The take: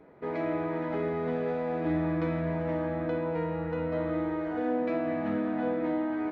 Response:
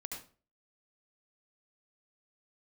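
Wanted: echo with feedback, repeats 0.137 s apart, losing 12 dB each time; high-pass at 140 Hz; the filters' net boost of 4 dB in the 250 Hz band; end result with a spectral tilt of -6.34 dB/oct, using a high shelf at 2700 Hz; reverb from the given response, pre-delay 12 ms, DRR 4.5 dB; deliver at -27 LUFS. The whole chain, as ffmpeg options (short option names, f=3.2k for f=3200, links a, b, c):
-filter_complex "[0:a]highpass=140,equalizer=f=250:t=o:g=6,highshelf=f=2.7k:g=-8.5,aecho=1:1:137|274|411:0.251|0.0628|0.0157,asplit=2[a][b];[1:a]atrim=start_sample=2205,adelay=12[c];[b][c]afir=irnorm=-1:irlink=0,volume=-3dB[d];[a][d]amix=inputs=2:normalize=0,volume=-1dB"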